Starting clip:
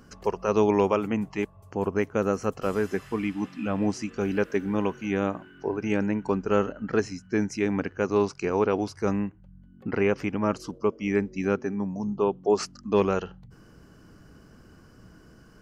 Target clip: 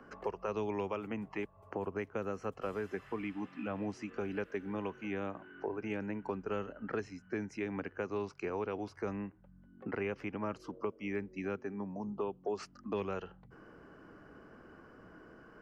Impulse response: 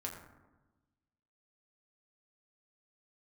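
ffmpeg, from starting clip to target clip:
-filter_complex "[0:a]acrossover=split=150|3000[link_01][link_02][link_03];[link_02]acompressor=threshold=-37dB:ratio=6[link_04];[link_01][link_04][link_03]amix=inputs=3:normalize=0,acrossover=split=280 2400:gain=0.2 1 0.0794[link_05][link_06][link_07];[link_05][link_06][link_07]amix=inputs=3:normalize=0,volume=2.5dB"

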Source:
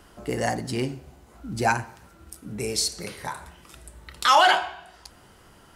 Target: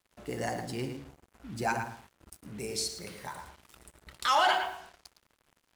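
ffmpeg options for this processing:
ffmpeg -i in.wav -filter_complex "[0:a]asplit=2[link_01][link_02];[link_02]adelay=110,lowpass=frequency=3200:poles=1,volume=-6dB,asplit=2[link_03][link_04];[link_04]adelay=110,lowpass=frequency=3200:poles=1,volume=0.23,asplit=2[link_05][link_06];[link_06]adelay=110,lowpass=frequency=3200:poles=1,volume=0.23[link_07];[link_01][link_03][link_05][link_07]amix=inputs=4:normalize=0,acrusher=bits=6:mix=0:aa=0.5,volume=-8.5dB" out.wav

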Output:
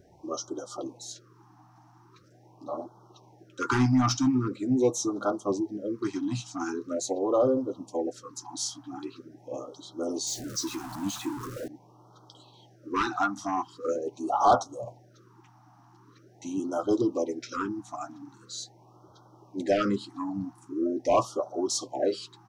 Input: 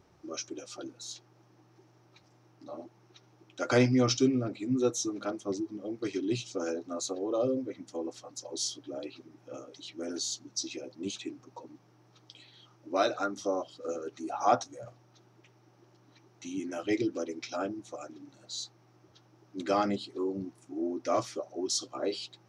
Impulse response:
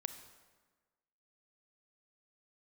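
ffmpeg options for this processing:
-filter_complex "[0:a]asettb=1/sr,asplit=3[link_01][link_02][link_03];[link_01]atrim=end=10.274[link_04];[link_02]atrim=start=10.27:end=11.68,asetpts=PTS-STARTPTS,afade=type=in:duration=0.004:curve=qsin,afade=type=out:start_time=1.406:duration=0.004:curve=qsin,aeval=exprs='val(0)+0.5*0.0112*sgn(val(0))':channel_layout=same[link_05];[link_03]atrim=start=11.676[link_06];[link_04][link_05]acrossfade=duration=0.004:curve1=hsin:curve2=qsin[link_07];[link_07][link_06]acrossfade=duration=0.004:curve1=qsin:curve2=hsin,firequalizer=gain_entry='entry(320,0);entry(1000,8);entry(2200,-9);entry(7900,-1)':delay=0.05:min_phase=1,asoftclip=type=tanh:threshold=-19dB,afftfilt=real='re*(1-between(b*sr/1024,430*pow(2200/430,0.5+0.5*sin(2*PI*0.43*pts/sr))/1.41,430*pow(2200/430,0.5+0.5*sin(2*PI*0.43*pts/sr))*1.41))':imag='im*(1-between(b*sr/1024,430*pow(2200/430,0.5+0.5*sin(2*PI*0.43*pts/sr))/1.41,430*pow(2200/430,0.5+0.5*sin(2*PI*0.43*pts/sr))*1.41))':win_size=1024:overlap=0.75,volume=5dB"

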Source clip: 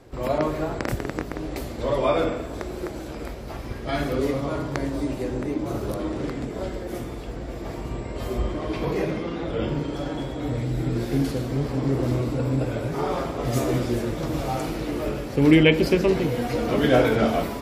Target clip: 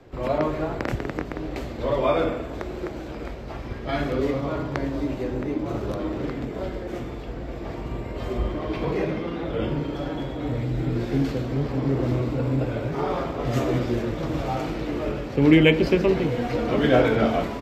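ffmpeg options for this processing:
ffmpeg -i in.wav -filter_complex "[0:a]acrossover=split=120|1500|5300[link_01][link_02][link_03][link_04];[link_04]acrusher=samples=9:mix=1:aa=0.000001[link_05];[link_01][link_02][link_03][link_05]amix=inputs=4:normalize=0,aresample=32000,aresample=44100" out.wav

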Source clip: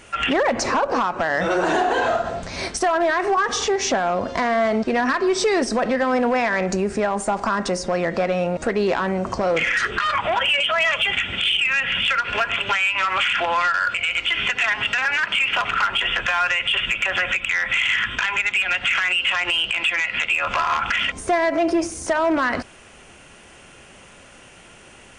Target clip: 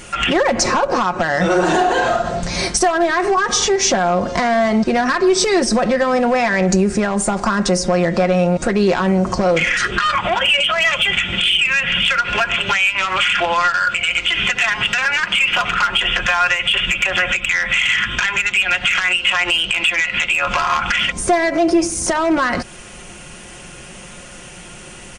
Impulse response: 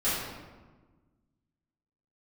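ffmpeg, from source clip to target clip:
-filter_complex "[0:a]aecho=1:1:5.6:0.47,asplit=2[link_01][link_02];[link_02]acompressor=threshold=-28dB:ratio=6,volume=0.5dB[link_03];[link_01][link_03]amix=inputs=2:normalize=0,bass=frequency=250:gain=6,treble=frequency=4000:gain=6"

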